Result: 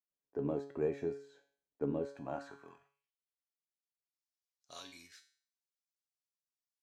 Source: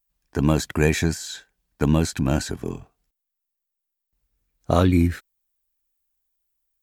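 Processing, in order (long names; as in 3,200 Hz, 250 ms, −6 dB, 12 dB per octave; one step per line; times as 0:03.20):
tuned comb filter 140 Hz, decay 0.49 s, harmonics all, mix 80%
band-pass filter sweep 450 Hz → 5,200 Hz, 0:01.99–0:03.50
level +2 dB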